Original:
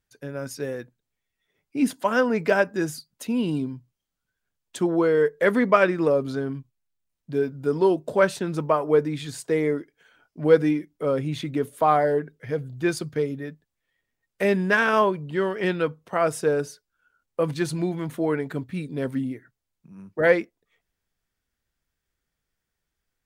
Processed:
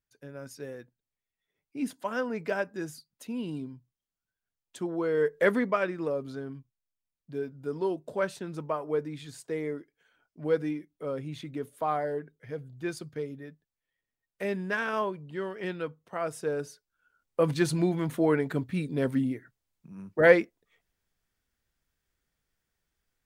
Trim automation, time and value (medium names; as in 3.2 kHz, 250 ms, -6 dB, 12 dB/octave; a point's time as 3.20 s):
4.98 s -10 dB
5.41 s -2 dB
5.76 s -10 dB
16.31 s -10 dB
17.52 s 0 dB